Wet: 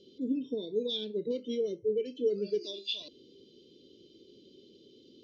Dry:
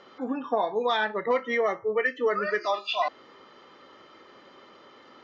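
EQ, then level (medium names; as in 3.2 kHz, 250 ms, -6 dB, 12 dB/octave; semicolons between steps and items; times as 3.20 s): elliptic band-stop 410–3400 Hz, stop band 40 dB; distance through air 55 m; +1.0 dB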